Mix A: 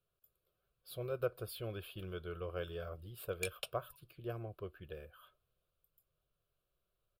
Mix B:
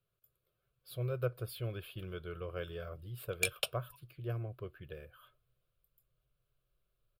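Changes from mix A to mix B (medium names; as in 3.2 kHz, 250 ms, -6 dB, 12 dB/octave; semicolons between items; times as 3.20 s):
speech: add graphic EQ with 31 bands 125 Hz +11 dB, 800 Hz -4 dB, 2 kHz +7 dB; background +8.5 dB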